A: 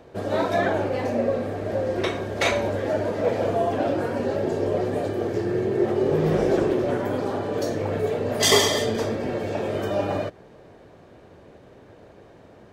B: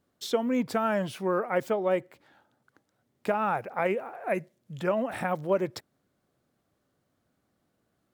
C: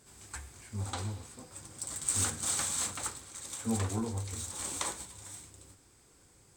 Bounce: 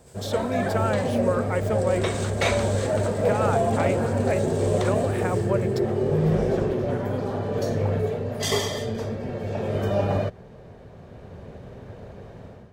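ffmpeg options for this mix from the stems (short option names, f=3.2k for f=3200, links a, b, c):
-filter_complex "[0:a]lowshelf=f=340:g=11,dynaudnorm=f=520:g=3:m=11.5dB,volume=-8.5dB[a];[1:a]volume=0.5dB[b];[2:a]acrossover=split=5000[c][d];[d]acompressor=threshold=-46dB:ratio=4:attack=1:release=60[e];[c][e]amix=inputs=2:normalize=0,volume=1.5dB[f];[a][b][f]amix=inputs=3:normalize=0,equalizer=f=310:w=4.5:g=-12"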